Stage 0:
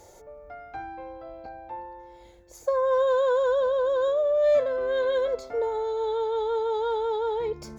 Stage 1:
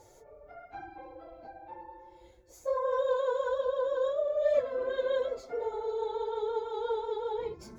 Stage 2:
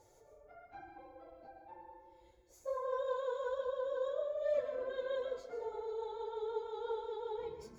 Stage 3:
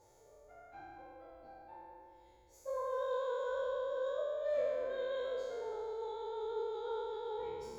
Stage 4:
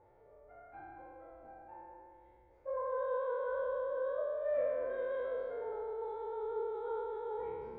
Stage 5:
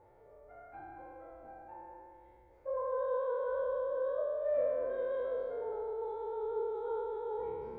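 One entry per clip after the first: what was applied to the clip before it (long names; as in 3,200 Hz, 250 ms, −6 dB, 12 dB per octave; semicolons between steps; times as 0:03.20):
random phases in long frames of 50 ms; level −6.5 dB
dense smooth reverb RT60 0.51 s, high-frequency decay 0.95×, pre-delay 115 ms, DRR 8 dB; level −8 dB
peak hold with a decay on every bin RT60 2.03 s; level −3 dB
low-pass filter 2,200 Hz 24 dB per octave; level +1 dB
dynamic equaliser 2,000 Hz, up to −7 dB, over −57 dBFS, Q 0.99; level +2.5 dB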